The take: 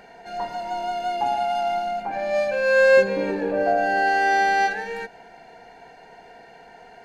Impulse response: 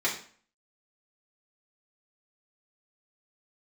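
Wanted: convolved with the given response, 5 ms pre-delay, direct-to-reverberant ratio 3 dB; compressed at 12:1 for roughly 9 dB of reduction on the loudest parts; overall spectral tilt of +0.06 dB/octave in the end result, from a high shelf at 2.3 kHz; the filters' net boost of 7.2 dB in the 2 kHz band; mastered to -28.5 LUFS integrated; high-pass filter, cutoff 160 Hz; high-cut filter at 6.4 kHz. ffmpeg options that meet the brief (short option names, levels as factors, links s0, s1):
-filter_complex "[0:a]highpass=160,lowpass=6400,equalizer=f=2000:t=o:g=8,highshelf=f=2300:g=4.5,acompressor=threshold=0.126:ratio=12,asplit=2[s0][s1];[1:a]atrim=start_sample=2205,adelay=5[s2];[s1][s2]afir=irnorm=-1:irlink=0,volume=0.224[s3];[s0][s3]amix=inputs=2:normalize=0,volume=0.422"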